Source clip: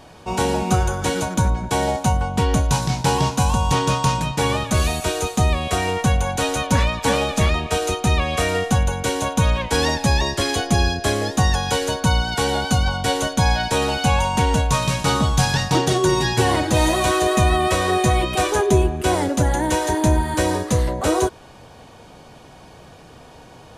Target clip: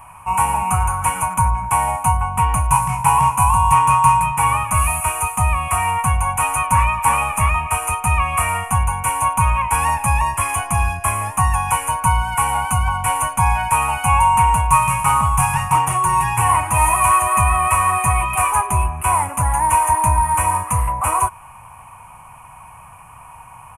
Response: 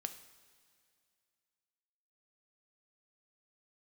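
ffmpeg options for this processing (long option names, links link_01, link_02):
-filter_complex "[0:a]asplit=2[link_01][link_02];[link_02]acontrast=84,volume=-2.5dB[link_03];[link_01][link_03]amix=inputs=2:normalize=0,firequalizer=gain_entry='entry(110,0);entry(250,-16);entry(400,-22);entry(1000,14);entry(1600,-5);entry(2500,6);entry(3800,-29);entry(9700,14);entry(14000,5)':delay=0.05:min_phase=1,volume=-7.5dB"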